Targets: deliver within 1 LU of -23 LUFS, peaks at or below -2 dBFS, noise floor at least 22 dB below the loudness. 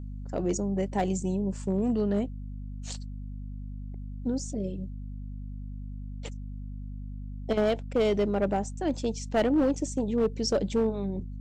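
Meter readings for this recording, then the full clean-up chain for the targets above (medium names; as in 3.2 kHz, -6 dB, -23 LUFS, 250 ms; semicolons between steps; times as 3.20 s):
clipped samples 0.8%; clipping level -19.0 dBFS; hum 50 Hz; highest harmonic 250 Hz; hum level -35 dBFS; loudness -29.0 LUFS; peak level -19.0 dBFS; loudness target -23.0 LUFS
-> clip repair -19 dBFS; de-hum 50 Hz, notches 5; trim +6 dB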